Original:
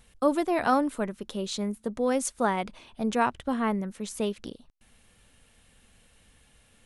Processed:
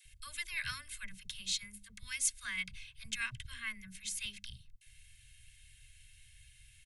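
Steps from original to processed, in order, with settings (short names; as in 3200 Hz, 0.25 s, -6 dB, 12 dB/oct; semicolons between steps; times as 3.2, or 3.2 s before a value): elliptic band-stop 120–2100 Hz, stop band 50 dB; bell 600 Hz +7.5 dB 2 oct; notches 50/100/150/200/250 Hz; comb 1.9 ms, depth 54%; dispersion lows, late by 54 ms, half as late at 540 Hz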